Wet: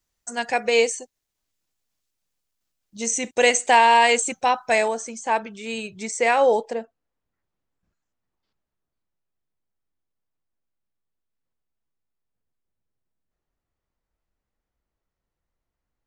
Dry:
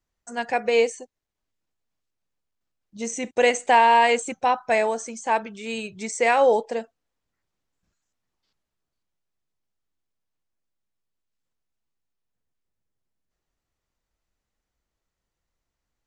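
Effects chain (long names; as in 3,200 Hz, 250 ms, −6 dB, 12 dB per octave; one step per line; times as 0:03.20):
high-shelf EQ 3,100 Hz +10.5 dB, from 0:04.88 +2 dB, from 0:06.73 −12 dB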